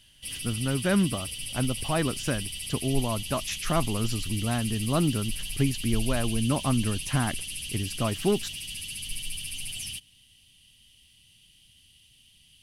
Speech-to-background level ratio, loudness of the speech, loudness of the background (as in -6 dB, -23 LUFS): 5.0 dB, -29.0 LUFS, -34.0 LUFS